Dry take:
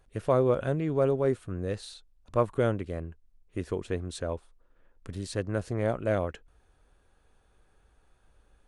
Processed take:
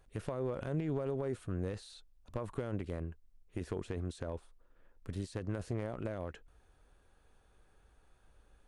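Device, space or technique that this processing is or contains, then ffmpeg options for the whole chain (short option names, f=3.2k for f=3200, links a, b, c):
de-esser from a sidechain: -filter_complex "[0:a]asplit=2[a][b];[b]highpass=f=4.7k:p=1,apad=whole_len=382460[c];[a][c]sidechaincompress=threshold=-51dB:ratio=5:attack=0.77:release=36,volume=-1.5dB"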